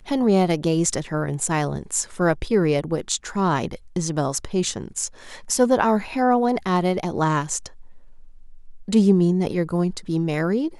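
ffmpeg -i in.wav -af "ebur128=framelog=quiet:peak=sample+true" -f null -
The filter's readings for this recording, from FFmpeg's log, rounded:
Integrated loudness:
  I:         -22.0 LUFS
  Threshold: -32.5 LUFS
Loudness range:
  LRA:         1.7 LU
  Threshold: -42.8 LUFS
  LRA low:   -23.6 LUFS
  LRA high:  -21.9 LUFS
Sample peak:
  Peak:       -4.5 dBFS
True peak:
  Peak:       -4.4 dBFS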